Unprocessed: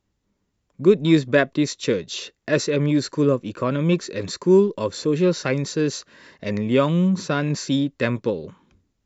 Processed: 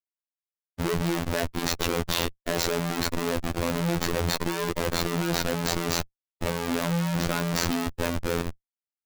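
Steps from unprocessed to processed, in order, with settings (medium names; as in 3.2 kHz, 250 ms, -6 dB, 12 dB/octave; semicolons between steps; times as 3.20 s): Schmitt trigger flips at -31.5 dBFS; level held to a coarse grid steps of 12 dB; robot voice 85.2 Hz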